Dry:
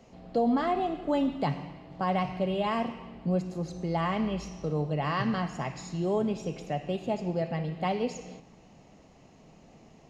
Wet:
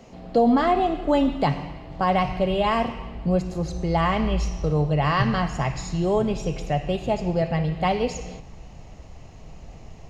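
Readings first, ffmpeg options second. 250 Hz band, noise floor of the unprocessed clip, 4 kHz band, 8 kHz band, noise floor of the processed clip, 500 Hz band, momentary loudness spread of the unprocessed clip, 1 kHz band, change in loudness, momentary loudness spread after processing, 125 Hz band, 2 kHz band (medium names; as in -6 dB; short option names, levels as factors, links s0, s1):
+6.0 dB, -56 dBFS, +8.0 dB, no reading, -44 dBFS, +7.0 dB, 8 LU, +7.5 dB, +7.0 dB, 8 LU, +8.0 dB, +8.0 dB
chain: -af "asubboost=boost=9:cutoff=74,volume=2.51"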